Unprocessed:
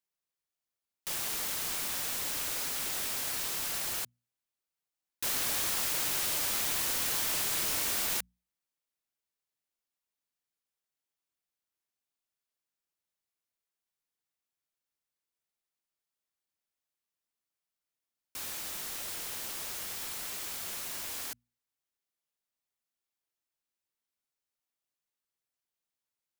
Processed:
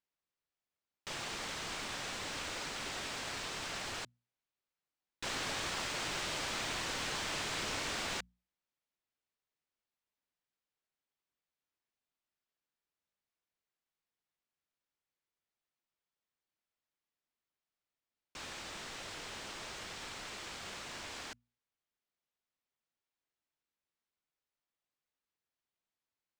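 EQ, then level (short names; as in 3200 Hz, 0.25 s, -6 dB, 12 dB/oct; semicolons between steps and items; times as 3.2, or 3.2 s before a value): air absorption 140 m; bell 8000 Hz +4 dB 0.42 oct; +1.0 dB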